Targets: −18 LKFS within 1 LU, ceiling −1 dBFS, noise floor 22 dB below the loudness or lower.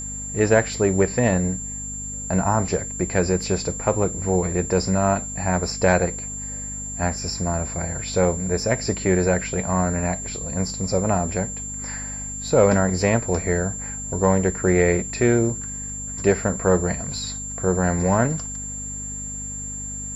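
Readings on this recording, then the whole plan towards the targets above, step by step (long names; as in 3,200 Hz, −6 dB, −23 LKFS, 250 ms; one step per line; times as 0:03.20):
mains hum 50 Hz; hum harmonics up to 250 Hz; level of the hum −34 dBFS; interfering tone 7,300 Hz; level of the tone −30 dBFS; integrated loudness −22.5 LKFS; sample peak −4.5 dBFS; target loudness −18.0 LKFS
→ hum removal 50 Hz, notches 5
notch filter 7,300 Hz, Q 30
level +4.5 dB
brickwall limiter −1 dBFS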